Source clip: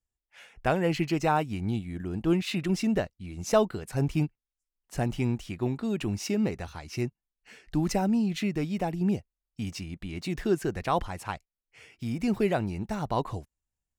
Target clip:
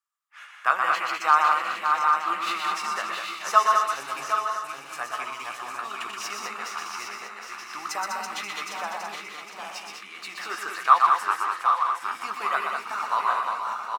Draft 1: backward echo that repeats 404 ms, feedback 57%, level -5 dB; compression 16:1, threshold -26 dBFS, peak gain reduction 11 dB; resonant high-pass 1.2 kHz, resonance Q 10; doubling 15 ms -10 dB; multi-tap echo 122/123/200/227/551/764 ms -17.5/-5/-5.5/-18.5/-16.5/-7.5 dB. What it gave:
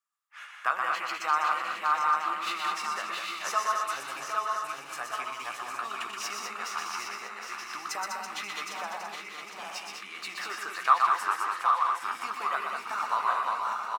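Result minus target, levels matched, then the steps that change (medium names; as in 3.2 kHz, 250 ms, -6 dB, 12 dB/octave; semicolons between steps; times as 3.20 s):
compression: peak gain reduction +11 dB
remove: compression 16:1, threshold -26 dBFS, peak gain reduction 11 dB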